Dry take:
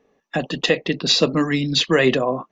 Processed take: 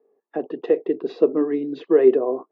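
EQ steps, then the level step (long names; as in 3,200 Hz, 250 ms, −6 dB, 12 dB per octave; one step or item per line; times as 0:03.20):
dynamic equaliser 320 Hz, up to +6 dB, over −31 dBFS, Q 1.3
four-pole ladder band-pass 480 Hz, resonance 55%
parametric band 550 Hz −7.5 dB 0.28 octaves
+6.5 dB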